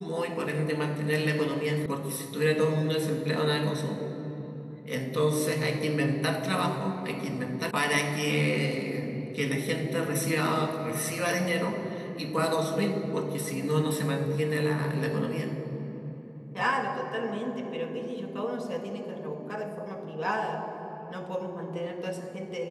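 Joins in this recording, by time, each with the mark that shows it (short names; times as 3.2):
1.86 sound cut off
7.71 sound cut off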